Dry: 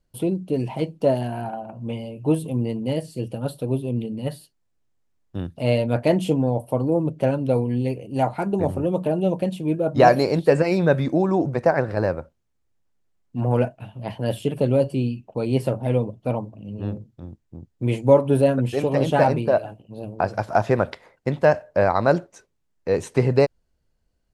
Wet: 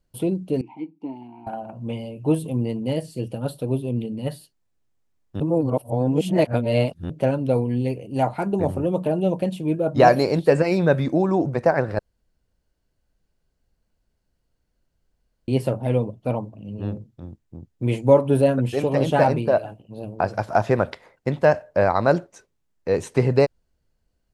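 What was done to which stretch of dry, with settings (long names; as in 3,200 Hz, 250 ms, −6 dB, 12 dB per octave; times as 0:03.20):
0:00.61–0:01.47: formant filter u
0:05.40–0:07.10: reverse
0:11.99–0:15.48: fill with room tone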